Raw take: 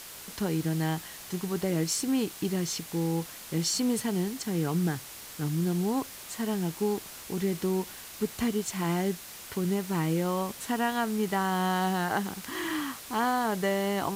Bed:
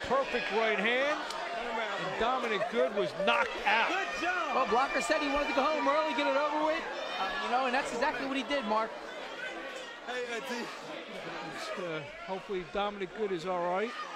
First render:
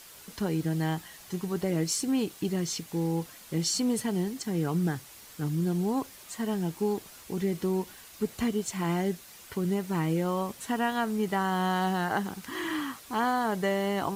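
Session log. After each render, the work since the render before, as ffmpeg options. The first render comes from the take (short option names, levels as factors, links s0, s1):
-af "afftdn=nr=7:nf=-45"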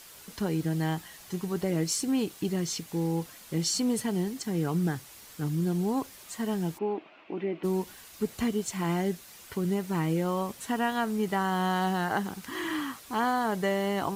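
-filter_complex "[0:a]asplit=3[s0][s1][s2];[s0]afade=t=out:st=6.77:d=0.02[s3];[s1]highpass=300,equalizer=f=310:t=q:w=4:g=9,equalizer=f=460:t=q:w=4:g=-4,equalizer=f=650:t=q:w=4:g=7,equalizer=f=1700:t=q:w=4:g=-4,equalizer=f=2600:t=q:w=4:g=6,lowpass=f=2700:w=0.5412,lowpass=f=2700:w=1.3066,afade=t=in:st=6.77:d=0.02,afade=t=out:st=7.63:d=0.02[s4];[s2]afade=t=in:st=7.63:d=0.02[s5];[s3][s4][s5]amix=inputs=3:normalize=0"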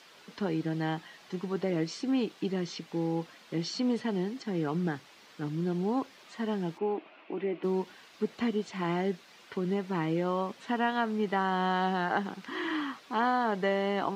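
-filter_complex "[0:a]acrossover=split=5200[s0][s1];[s1]acompressor=threshold=0.00141:ratio=4:attack=1:release=60[s2];[s0][s2]amix=inputs=2:normalize=0,acrossover=split=160 5900:gain=0.0708 1 0.178[s3][s4][s5];[s3][s4][s5]amix=inputs=3:normalize=0"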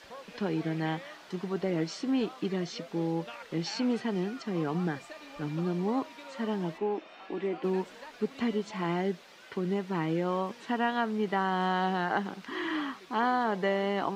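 -filter_complex "[1:a]volume=0.133[s0];[0:a][s0]amix=inputs=2:normalize=0"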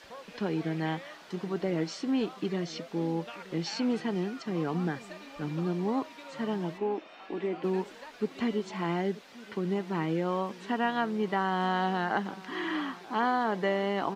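-filter_complex "[0:a]asplit=2[s0][s1];[s1]adelay=932.9,volume=0.112,highshelf=f=4000:g=-21[s2];[s0][s2]amix=inputs=2:normalize=0"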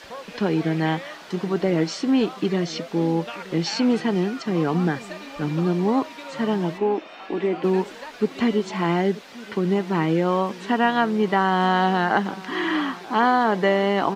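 -af "volume=2.82"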